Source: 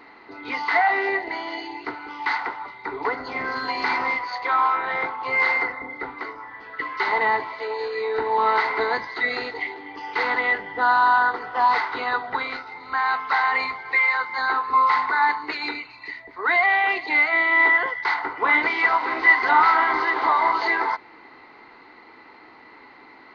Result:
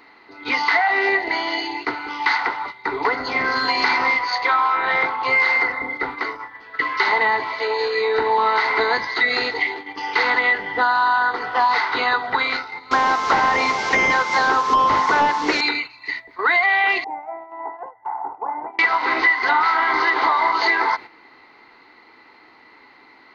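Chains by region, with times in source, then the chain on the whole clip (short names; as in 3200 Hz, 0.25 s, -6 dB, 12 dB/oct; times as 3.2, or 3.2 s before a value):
12.91–15.61 delta modulation 32 kbps, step -31 dBFS + bell 390 Hz +12.5 dB 3 oct
17.04–18.79 compressor 1.5:1, threshold -28 dBFS + ladder low-pass 870 Hz, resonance 75%
whole clip: gate -37 dBFS, range -9 dB; high shelf 2800 Hz +8.5 dB; compressor 6:1, threshold -20 dBFS; gain +5.5 dB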